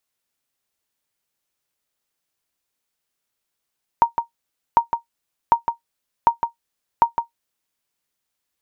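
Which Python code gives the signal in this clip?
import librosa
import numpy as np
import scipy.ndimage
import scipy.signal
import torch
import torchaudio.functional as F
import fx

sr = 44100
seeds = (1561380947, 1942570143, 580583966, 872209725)

y = fx.sonar_ping(sr, hz=933.0, decay_s=0.12, every_s=0.75, pings=5, echo_s=0.16, echo_db=-7.5, level_db=-4.0)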